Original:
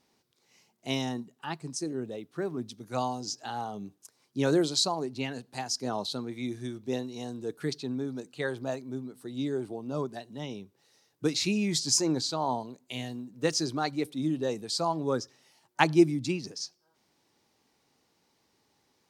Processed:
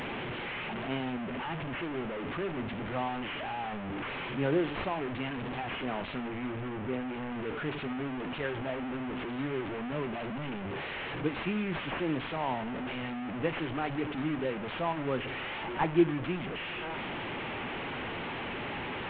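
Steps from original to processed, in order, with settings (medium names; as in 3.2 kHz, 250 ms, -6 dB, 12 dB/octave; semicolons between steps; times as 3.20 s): one-bit delta coder 16 kbps, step -27 dBFS; 6.28–7.32 s: distance through air 170 m; reverberation, pre-delay 3 ms, DRR 15 dB; trim -3.5 dB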